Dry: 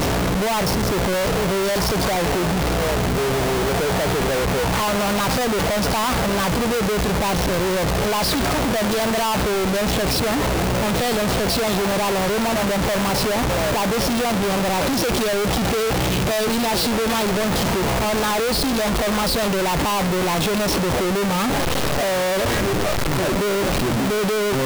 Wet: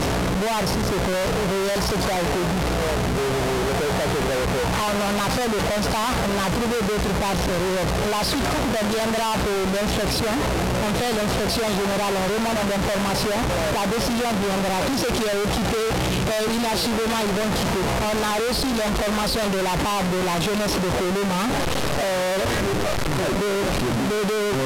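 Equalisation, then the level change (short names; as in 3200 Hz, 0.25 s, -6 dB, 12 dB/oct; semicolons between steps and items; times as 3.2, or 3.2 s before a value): Bessel low-pass 12000 Hz, order 6; -2.0 dB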